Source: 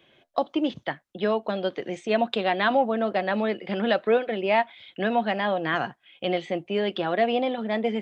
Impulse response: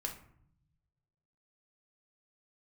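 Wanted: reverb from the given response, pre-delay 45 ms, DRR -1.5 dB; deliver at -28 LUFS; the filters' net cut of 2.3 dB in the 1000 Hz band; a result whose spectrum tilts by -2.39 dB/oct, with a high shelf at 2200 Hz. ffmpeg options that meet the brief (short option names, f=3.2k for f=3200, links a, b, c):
-filter_complex "[0:a]equalizer=f=1k:t=o:g=-4.5,highshelf=f=2.2k:g=5.5,asplit=2[a][b];[1:a]atrim=start_sample=2205,adelay=45[c];[b][c]afir=irnorm=-1:irlink=0,volume=1.5dB[d];[a][d]amix=inputs=2:normalize=0,volume=-5.5dB"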